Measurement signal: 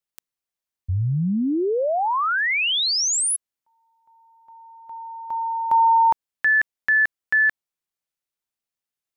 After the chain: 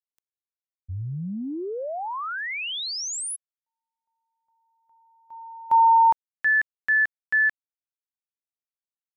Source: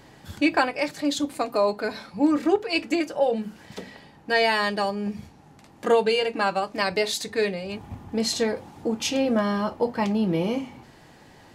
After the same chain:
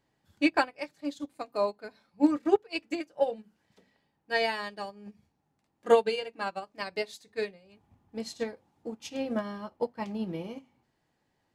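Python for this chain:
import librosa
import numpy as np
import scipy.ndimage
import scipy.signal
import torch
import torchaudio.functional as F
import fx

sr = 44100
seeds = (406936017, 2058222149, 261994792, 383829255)

y = fx.upward_expand(x, sr, threshold_db=-32.0, expansion=2.5)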